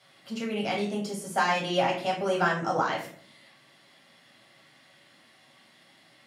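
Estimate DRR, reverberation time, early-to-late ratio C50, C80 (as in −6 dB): −3.5 dB, 0.55 s, 7.0 dB, 11.5 dB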